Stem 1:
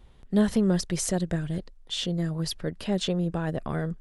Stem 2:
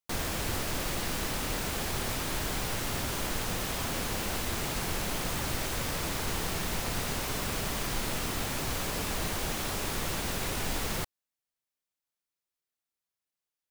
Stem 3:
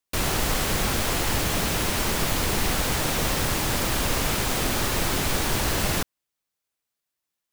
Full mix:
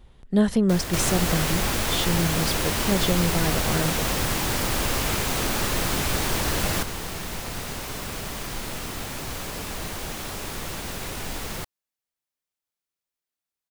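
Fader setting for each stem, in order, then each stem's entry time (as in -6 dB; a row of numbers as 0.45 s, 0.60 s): +2.5 dB, 0.0 dB, -1.0 dB; 0.00 s, 0.60 s, 0.80 s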